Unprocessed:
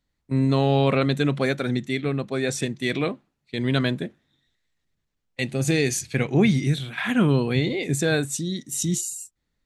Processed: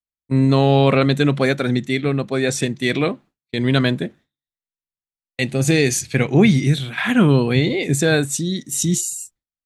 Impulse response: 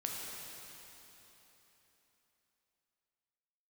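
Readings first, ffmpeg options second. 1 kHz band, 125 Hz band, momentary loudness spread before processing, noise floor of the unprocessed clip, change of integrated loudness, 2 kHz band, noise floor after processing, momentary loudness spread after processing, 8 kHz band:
+5.5 dB, +5.5 dB, 10 LU, −78 dBFS, +5.5 dB, +5.5 dB, below −85 dBFS, 10 LU, +5.5 dB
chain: -af "agate=range=-33dB:threshold=-45dB:ratio=3:detection=peak,volume=5.5dB"

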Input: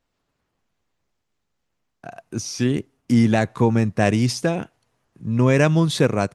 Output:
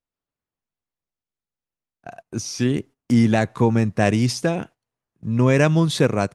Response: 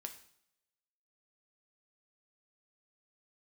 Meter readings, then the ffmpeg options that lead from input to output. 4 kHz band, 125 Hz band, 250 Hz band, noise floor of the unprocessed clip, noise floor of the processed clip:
0.0 dB, 0.0 dB, 0.0 dB, −76 dBFS, below −85 dBFS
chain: -af "agate=range=-17dB:threshold=-39dB:ratio=16:detection=peak"

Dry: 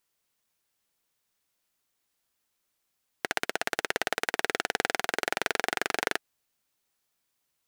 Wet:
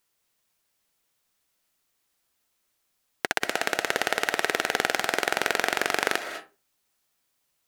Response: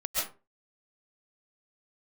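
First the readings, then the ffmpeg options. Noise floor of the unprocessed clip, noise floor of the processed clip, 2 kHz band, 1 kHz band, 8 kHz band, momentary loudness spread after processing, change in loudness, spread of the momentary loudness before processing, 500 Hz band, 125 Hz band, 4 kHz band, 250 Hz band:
−79 dBFS, −75 dBFS, +4.0 dB, +4.0 dB, +4.0 dB, 5 LU, +4.0 dB, 3 LU, +4.0 dB, +3.5 dB, +4.0 dB, +4.0 dB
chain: -filter_complex "[0:a]asplit=2[link_01][link_02];[1:a]atrim=start_sample=2205,adelay=64[link_03];[link_02][link_03]afir=irnorm=-1:irlink=0,volume=-15.5dB[link_04];[link_01][link_04]amix=inputs=2:normalize=0,volume=3.5dB"

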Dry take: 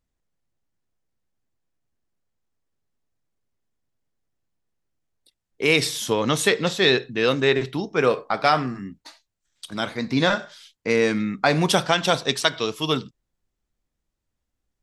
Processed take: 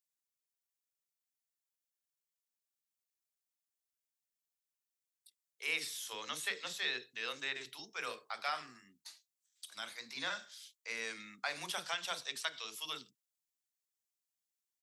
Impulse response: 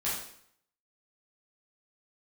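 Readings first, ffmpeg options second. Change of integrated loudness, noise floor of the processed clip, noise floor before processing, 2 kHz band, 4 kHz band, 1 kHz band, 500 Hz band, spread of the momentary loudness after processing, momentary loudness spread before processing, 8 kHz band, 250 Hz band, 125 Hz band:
−18.0 dB, below −85 dBFS, −81 dBFS, −15.0 dB, −15.0 dB, −19.5 dB, −28.0 dB, 13 LU, 9 LU, −14.0 dB, −32.0 dB, −35.5 dB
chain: -filter_complex "[0:a]aderivative,acrossover=split=2600[link_01][link_02];[link_02]acompressor=threshold=-41dB:ratio=4:attack=1:release=60[link_03];[link_01][link_03]amix=inputs=2:normalize=0,acrossover=split=430[link_04][link_05];[link_04]adelay=40[link_06];[link_06][link_05]amix=inputs=2:normalize=0,volume=-2dB"

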